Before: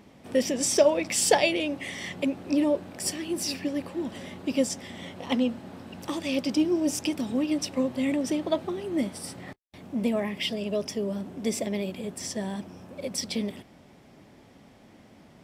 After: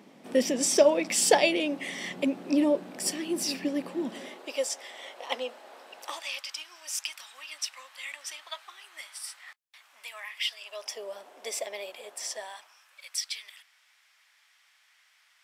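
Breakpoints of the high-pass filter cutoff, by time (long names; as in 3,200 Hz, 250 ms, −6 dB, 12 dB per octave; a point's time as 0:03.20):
high-pass filter 24 dB per octave
0:04.08 180 Hz
0:04.52 510 Hz
0:05.98 510 Hz
0:06.46 1,200 Hz
0:10.57 1,200 Hz
0:10.98 570 Hz
0:12.34 570 Hz
0:12.85 1,400 Hz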